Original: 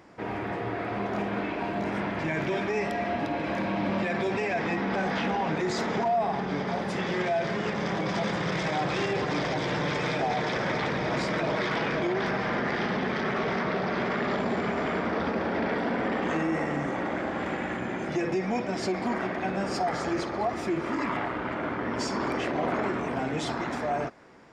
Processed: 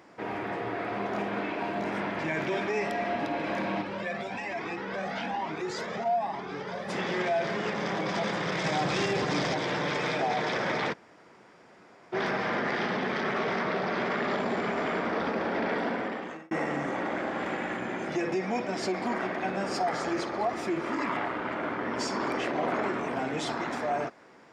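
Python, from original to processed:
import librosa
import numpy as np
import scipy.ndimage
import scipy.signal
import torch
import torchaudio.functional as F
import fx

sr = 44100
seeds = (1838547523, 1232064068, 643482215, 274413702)

y = fx.comb_cascade(x, sr, direction='rising', hz=1.1, at=(3.81, 6.88), fade=0.02)
y = fx.bass_treble(y, sr, bass_db=6, treble_db=6, at=(8.64, 9.55))
y = fx.edit(y, sr, fx.room_tone_fill(start_s=10.93, length_s=1.2, crossfade_s=0.02),
    fx.fade_out_span(start_s=15.85, length_s=0.66), tone=tone)
y = fx.highpass(y, sr, hz=230.0, slope=6)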